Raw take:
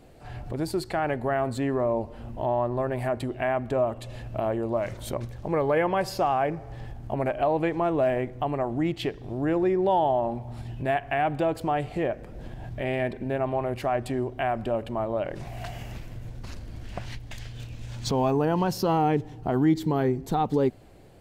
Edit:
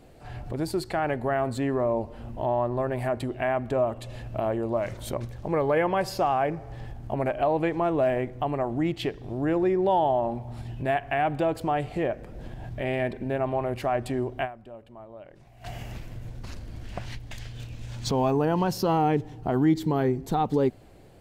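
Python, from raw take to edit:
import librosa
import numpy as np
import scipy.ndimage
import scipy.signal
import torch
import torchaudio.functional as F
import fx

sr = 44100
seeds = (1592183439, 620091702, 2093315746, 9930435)

y = fx.edit(x, sr, fx.fade_down_up(start_s=14.44, length_s=1.23, db=-16.5, fade_s=0.24, curve='exp'), tone=tone)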